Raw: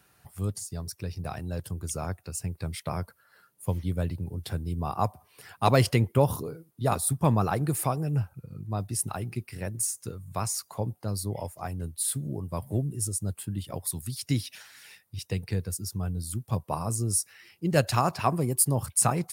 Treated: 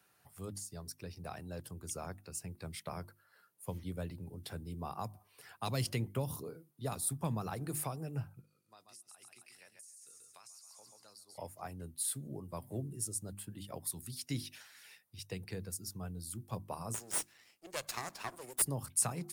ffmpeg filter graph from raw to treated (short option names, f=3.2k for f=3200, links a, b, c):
-filter_complex "[0:a]asettb=1/sr,asplit=3[a][b][c];[a]atrim=end=8.424[d];[b]atrim=start=8.42:end=11.38,asetpts=PTS-STARTPTS,afade=t=in:d=0.004:c=qsin,afade=t=out:st=2.956:d=0.004:c=qsin,bandpass=f=5.7k:t=q:w=0.65,aecho=1:1:135|270|405|540|675:0.376|0.165|0.0728|0.032|0.0141,atrim=end_sample=130536,acompressor=threshold=-45dB:ratio=10:attack=3.2:release=140:knee=1:detection=peak[e];[c]atrim=start=11.376[f];[d][e]acrossfade=d=0.004:c1=hsin:c2=qsin[g];[g][f]acrossfade=d=0.004:c1=qsin:c2=hsin,asettb=1/sr,asplit=3[h][i][j];[h]atrim=end=16.944[k];[i]atrim=start=16.94:end=18.62,asetpts=PTS-STARTPTS,afade=t=in:d=0.004:c=qsin,afade=t=out:st=1.676:d=0.004:c=qsin,highpass=450,equalizer=f=7.2k:t=o:w=0.81:g=7,aeval=exprs='max(val(0),0)':c=same[l];[j]atrim=start=18.616[m];[k][l]acrossfade=d=0.004:c1=hsin:c2=qsin[n];[n][m]acrossfade=d=0.004:c1=qsin:c2=hsin,highpass=f=170:p=1,bandreject=f=50:t=h:w=6,bandreject=f=100:t=h:w=6,bandreject=f=150:t=h:w=6,bandreject=f=200:t=h:w=6,bandreject=f=250:t=h:w=6,bandreject=f=300:t=h:w=6,bandreject=f=350:t=h:w=6,acrossover=split=220|3000[o][p][q];[p]acompressor=threshold=-31dB:ratio=6[r];[o][r][q]amix=inputs=3:normalize=0,volume=-7dB"